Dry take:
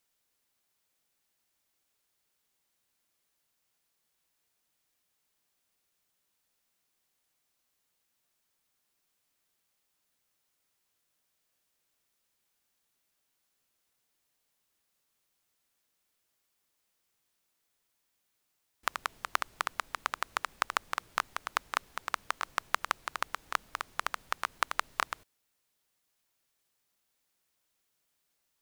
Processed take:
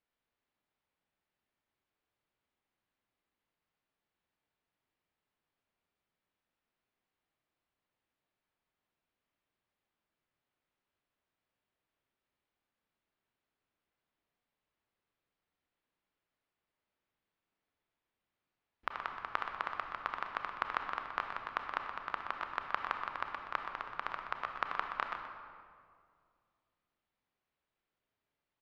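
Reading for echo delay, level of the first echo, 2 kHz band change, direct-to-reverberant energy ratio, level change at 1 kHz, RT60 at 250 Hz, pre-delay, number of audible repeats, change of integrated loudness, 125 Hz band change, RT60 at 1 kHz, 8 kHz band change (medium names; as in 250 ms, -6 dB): 124 ms, -9.0 dB, -4.5 dB, 3.0 dB, -3.0 dB, 2.6 s, 27 ms, 1, -4.0 dB, no reading, 2.0 s, under -25 dB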